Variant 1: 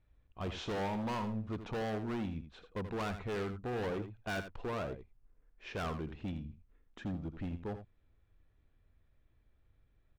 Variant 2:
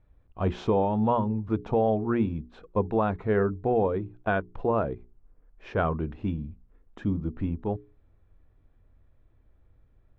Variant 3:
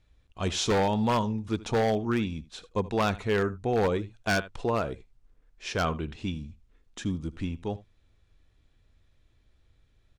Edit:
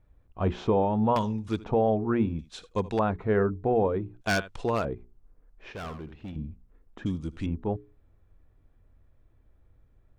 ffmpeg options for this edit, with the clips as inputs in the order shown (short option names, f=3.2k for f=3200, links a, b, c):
-filter_complex "[2:a]asplit=4[a][b][c][d];[1:a]asplit=6[e][f][g][h][i][j];[e]atrim=end=1.162[k];[a]atrim=start=1.158:end=1.642[l];[f]atrim=start=1.638:end=2.392[m];[b]atrim=start=2.388:end=2.992[n];[g]atrim=start=2.988:end=4.212[o];[c]atrim=start=4.208:end=4.852[p];[h]atrim=start=4.848:end=5.722[q];[0:a]atrim=start=5.718:end=6.362[r];[i]atrim=start=6.358:end=7.062[s];[d]atrim=start=7.058:end=7.462[t];[j]atrim=start=7.458[u];[k][l]acrossfade=d=0.004:c1=hsin:c2=hsin[v];[v][m]acrossfade=d=0.004:c1=hsin:c2=hsin[w];[w][n]acrossfade=d=0.004:c1=hsin:c2=hsin[x];[x][o]acrossfade=d=0.004:c1=hsin:c2=hsin[y];[y][p]acrossfade=d=0.004:c1=hsin:c2=hsin[z];[z][q]acrossfade=d=0.004:c1=hsin:c2=hsin[aa];[aa][r]acrossfade=d=0.004:c1=hsin:c2=hsin[ab];[ab][s]acrossfade=d=0.004:c1=hsin:c2=hsin[ac];[ac][t]acrossfade=d=0.004:c1=hsin:c2=hsin[ad];[ad][u]acrossfade=d=0.004:c1=hsin:c2=hsin"